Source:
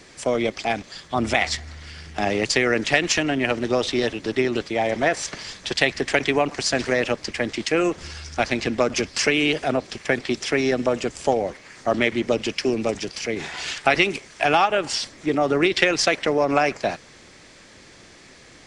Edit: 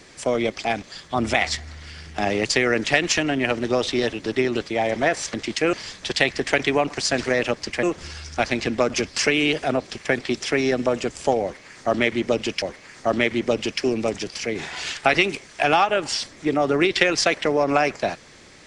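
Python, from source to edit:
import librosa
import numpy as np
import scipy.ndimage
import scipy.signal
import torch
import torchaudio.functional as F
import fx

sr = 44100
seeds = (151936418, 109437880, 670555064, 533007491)

y = fx.edit(x, sr, fx.move(start_s=7.44, length_s=0.39, to_s=5.34),
    fx.repeat(start_s=11.43, length_s=1.19, count=2), tone=tone)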